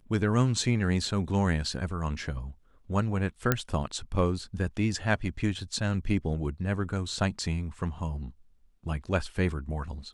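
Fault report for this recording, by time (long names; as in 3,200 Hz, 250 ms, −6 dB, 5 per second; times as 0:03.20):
0:03.52: click −8 dBFS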